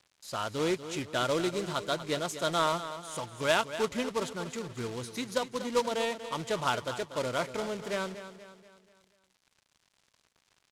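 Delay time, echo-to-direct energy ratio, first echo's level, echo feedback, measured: 0.24 s, -11.0 dB, -12.0 dB, 46%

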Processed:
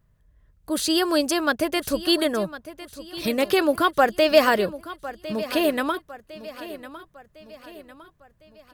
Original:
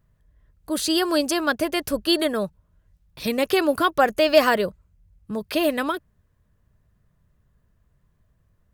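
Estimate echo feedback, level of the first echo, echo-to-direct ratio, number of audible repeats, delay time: 46%, -15.5 dB, -14.5 dB, 3, 1.055 s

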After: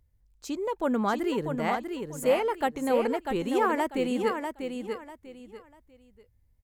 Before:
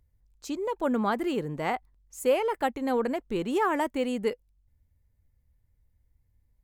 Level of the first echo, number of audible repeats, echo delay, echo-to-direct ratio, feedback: -6.0 dB, 3, 0.644 s, -5.5 dB, 26%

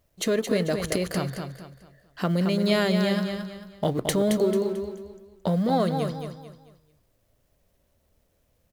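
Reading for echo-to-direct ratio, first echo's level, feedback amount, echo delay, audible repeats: -6.0 dB, -6.5 dB, 34%, 0.221 s, 4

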